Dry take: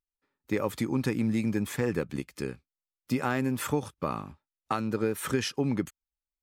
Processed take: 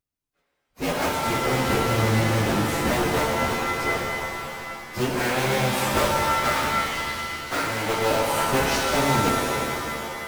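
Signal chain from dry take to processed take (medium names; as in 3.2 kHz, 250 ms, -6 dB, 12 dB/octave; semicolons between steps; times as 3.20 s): cycle switcher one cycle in 2, inverted; plain phase-vocoder stretch 1.6×; pitch-shifted reverb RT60 2.6 s, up +7 st, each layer -2 dB, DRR 0 dB; trim +4.5 dB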